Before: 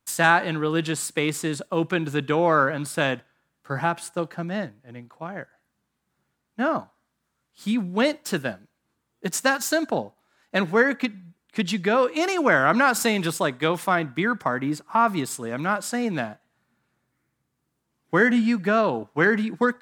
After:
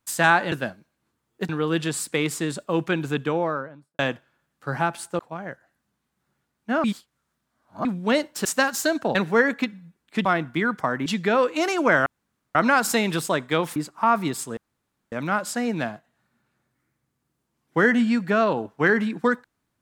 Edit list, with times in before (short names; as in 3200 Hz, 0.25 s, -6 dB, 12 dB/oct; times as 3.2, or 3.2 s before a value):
2.06–3.02 studio fade out
4.22–5.09 cut
6.74–7.75 reverse
8.35–9.32 move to 0.52
10.02–10.56 cut
12.66 insert room tone 0.49 s
13.87–14.68 move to 11.66
15.49 insert room tone 0.55 s